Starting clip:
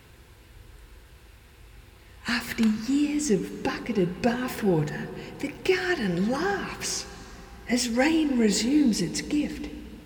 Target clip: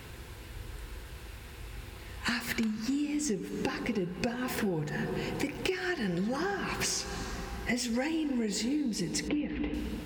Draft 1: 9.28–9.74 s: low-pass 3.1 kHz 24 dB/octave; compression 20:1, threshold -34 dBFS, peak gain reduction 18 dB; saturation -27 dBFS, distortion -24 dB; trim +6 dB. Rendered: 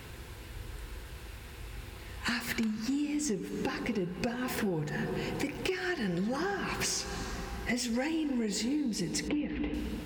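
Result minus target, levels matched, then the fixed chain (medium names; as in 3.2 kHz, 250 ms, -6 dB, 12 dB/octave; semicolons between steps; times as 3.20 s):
saturation: distortion +18 dB
9.28–9.74 s: low-pass 3.1 kHz 24 dB/octave; compression 20:1, threshold -34 dBFS, peak gain reduction 18 dB; saturation -16.5 dBFS, distortion -42 dB; trim +6 dB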